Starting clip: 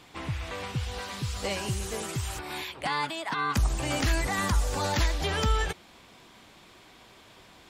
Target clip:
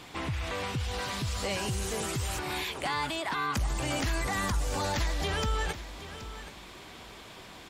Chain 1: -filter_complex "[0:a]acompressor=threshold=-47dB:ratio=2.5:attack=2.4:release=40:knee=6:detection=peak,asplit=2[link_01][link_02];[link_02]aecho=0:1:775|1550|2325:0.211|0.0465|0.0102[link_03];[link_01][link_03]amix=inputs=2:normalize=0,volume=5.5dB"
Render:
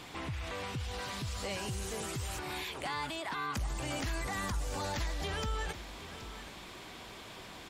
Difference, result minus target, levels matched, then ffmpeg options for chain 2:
downward compressor: peak gain reduction +5.5 dB
-filter_complex "[0:a]acompressor=threshold=-37.5dB:ratio=2.5:attack=2.4:release=40:knee=6:detection=peak,asplit=2[link_01][link_02];[link_02]aecho=0:1:775|1550|2325:0.211|0.0465|0.0102[link_03];[link_01][link_03]amix=inputs=2:normalize=0,volume=5.5dB"

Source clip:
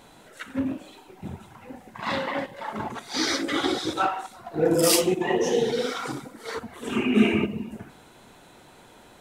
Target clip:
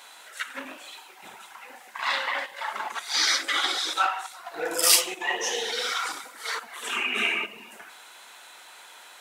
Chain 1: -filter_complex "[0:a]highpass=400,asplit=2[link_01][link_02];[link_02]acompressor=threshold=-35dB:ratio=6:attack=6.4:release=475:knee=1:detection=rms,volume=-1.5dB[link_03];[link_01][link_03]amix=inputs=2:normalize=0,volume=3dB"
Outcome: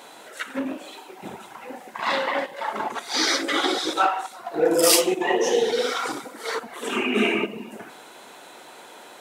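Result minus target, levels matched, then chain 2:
500 Hz band +10.5 dB
-filter_complex "[0:a]highpass=1200,asplit=2[link_01][link_02];[link_02]acompressor=threshold=-35dB:ratio=6:attack=6.4:release=475:knee=1:detection=rms,volume=-1.5dB[link_03];[link_01][link_03]amix=inputs=2:normalize=0,volume=3dB"

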